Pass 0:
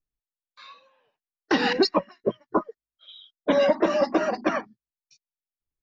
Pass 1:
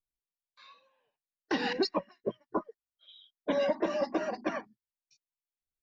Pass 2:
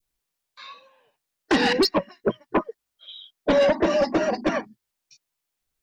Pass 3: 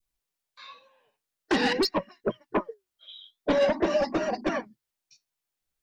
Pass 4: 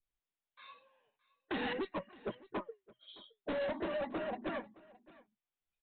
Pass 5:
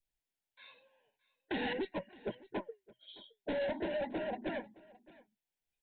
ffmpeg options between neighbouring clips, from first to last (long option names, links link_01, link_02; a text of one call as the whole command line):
ffmpeg -i in.wav -af "bandreject=frequency=1300:width=7.9,volume=-8.5dB" out.wav
ffmpeg -i in.wav -af "aeval=exprs='0.126*sin(PI/2*1.78*val(0)/0.126)':channel_layout=same,adynamicequalizer=threshold=0.0112:dfrequency=1200:dqfactor=0.83:tfrequency=1200:tqfactor=0.83:attack=5:release=100:ratio=0.375:range=2.5:mode=cutabove:tftype=bell,volume=4.5dB" out.wav
ffmpeg -i in.wav -af "flanger=delay=0.8:depth=8.7:regen=75:speed=0.48:shape=sinusoidal" out.wav
ffmpeg -i in.wav -af "aresample=8000,asoftclip=type=tanh:threshold=-25.5dB,aresample=44100,aecho=1:1:617:0.0841,volume=-7.5dB" out.wav
ffmpeg -i in.wav -af "asuperstop=centerf=1200:order=4:qfactor=2.6,volume=1dB" out.wav